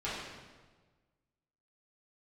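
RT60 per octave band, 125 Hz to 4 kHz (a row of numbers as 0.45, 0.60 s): 1.7, 1.5, 1.5, 1.3, 1.2, 1.1 s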